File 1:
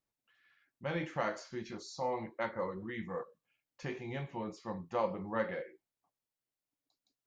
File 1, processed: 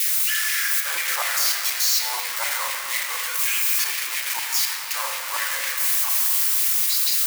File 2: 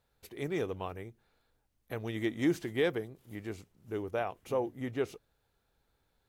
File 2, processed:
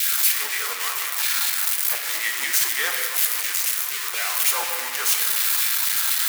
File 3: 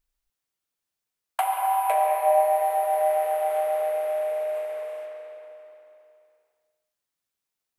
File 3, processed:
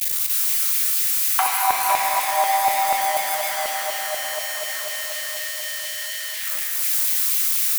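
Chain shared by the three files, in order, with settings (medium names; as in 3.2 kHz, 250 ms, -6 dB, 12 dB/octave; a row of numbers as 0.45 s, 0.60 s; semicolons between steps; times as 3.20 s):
zero-crossing glitches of -18 dBFS; LFO high-pass saw down 4.1 Hz 920–2300 Hz; simulated room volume 160 m³, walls hard, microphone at 0.37 m; normalise loudness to -20 LUFS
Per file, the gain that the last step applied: +4.0 dB, +6.0 dB, +3.0 dB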